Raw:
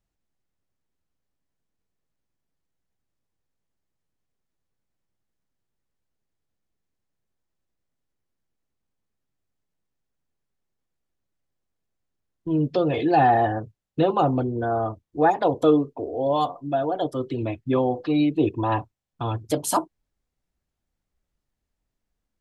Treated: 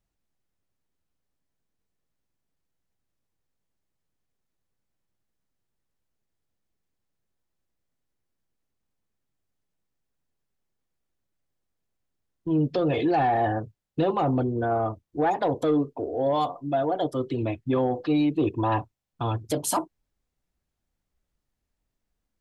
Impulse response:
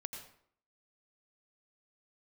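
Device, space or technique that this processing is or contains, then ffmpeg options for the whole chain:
soft clipper into limiter: -af "asoftclip=type=tanh:threshold=-10.5dB,alimiter=limit=-16.5dB:level=0:latency=1:release=23"

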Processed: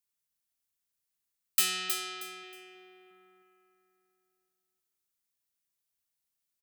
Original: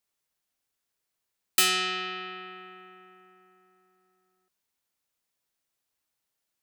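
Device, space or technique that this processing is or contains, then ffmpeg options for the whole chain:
smiley-face EQ: -filter_complex "[0:a]asettb=1/sr,asplit=3[link_01][link_02][link_03];[link_01]atrim=end=2.434[link_04];[link_02]atrim=start=2.43:end=3.11,asetpts=PTS-STARTPTS,afade=type=in:duration=0.004:curve=qsin,afade=type=out:start_time=0.676:duration=0.004:curve=qsin,aecho=1:1:2.8:0.64,atrim=end_sample=29988[link_05];[link_03]atrim=start=3.106[link_06];[link_04][link_05]acrossfade=duration=0.004:curve1=hsin:curve2=qsin[link_07];[link_07][link_06]acrossfade=duration=0.004:curve1=qsin:curve2=hsin,lowshelf=frequency=200:gain=3.5,equalizer=frequency=560:width_type=o:width=1.8:gain=-5.5,highshelf=frequency=6400:gain=8,aecho=1:1:316|632|948:0.447|0.107|0.0257,volume=-8.5dB"

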